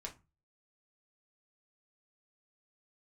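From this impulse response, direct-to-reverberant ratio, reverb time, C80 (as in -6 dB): -0.5 dB, 0.25 s, 22.5 dB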